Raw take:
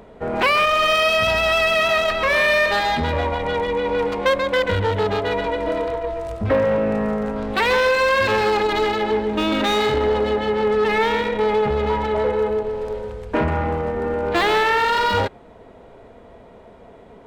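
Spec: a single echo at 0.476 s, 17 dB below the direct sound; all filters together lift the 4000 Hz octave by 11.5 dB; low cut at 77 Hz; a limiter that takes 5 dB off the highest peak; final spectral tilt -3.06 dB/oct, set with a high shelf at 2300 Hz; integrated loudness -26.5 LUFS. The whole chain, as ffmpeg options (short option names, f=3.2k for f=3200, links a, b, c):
-af "highpass=77,highshelf=f=2.3k:g=7,equalizer=f=4k:t=o:g=8.5,alimiter=limit=-8.5dB:level=0:latency=1,aecho=1:1:476:0.141,volume=-10dB"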